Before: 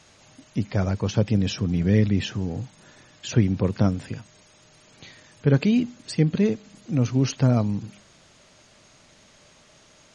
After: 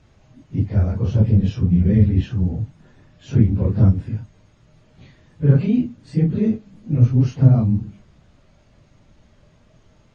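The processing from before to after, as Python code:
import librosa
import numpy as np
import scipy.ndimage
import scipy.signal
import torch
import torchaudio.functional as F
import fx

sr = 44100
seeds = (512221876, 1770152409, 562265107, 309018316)

y = fx.phase_scramble(x, sr, seeds[0], window_ms=100)
y = fx.riaa(y, sr, side='playback')
y = y * librosa.db_to_amplitude(-4.5)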